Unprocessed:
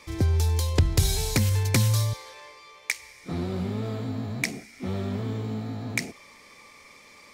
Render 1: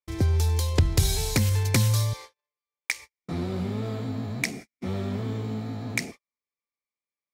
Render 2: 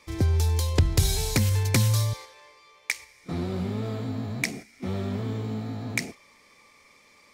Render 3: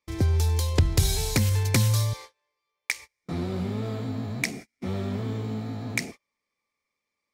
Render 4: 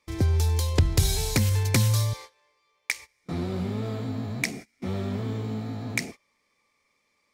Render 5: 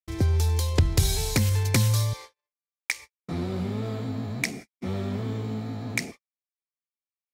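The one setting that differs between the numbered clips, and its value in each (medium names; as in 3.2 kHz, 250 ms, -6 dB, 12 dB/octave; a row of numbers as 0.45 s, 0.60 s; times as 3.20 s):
gate, range: -48 dB, -6 dB, -33 dB, -21 dB, -60 dB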